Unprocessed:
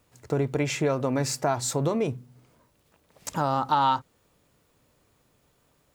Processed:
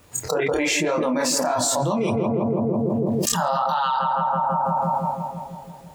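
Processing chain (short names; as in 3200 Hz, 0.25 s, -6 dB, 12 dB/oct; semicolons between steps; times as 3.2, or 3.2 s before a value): spectral noise reduction 27 dB; limiter -17.5 dBFS, peak gain reduction 6.5 dB; chorus voices 2, 1.1 Hz, delay 26 ms, depth 3.4 ms; added harmonics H 3 -36 dB, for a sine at -17.5 dBFS; on a send: darkening echo 0.165 s, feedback 73%, low-pass 1100 Hz, level -9 dB; on the sum: fast leveller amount 100%; gain +4.5 dB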